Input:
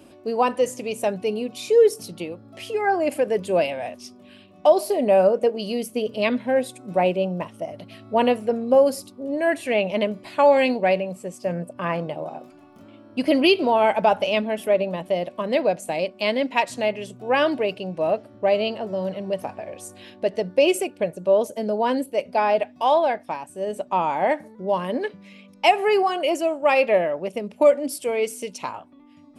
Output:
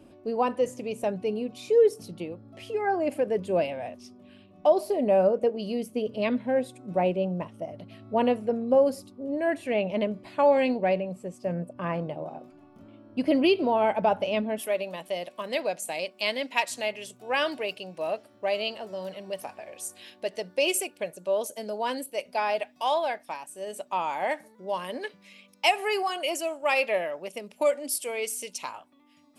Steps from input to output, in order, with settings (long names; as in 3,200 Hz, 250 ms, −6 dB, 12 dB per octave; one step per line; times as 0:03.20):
spectral tilt −1.5 dB per octave, from 0:14.58 +3 dB per octave
level −6 dB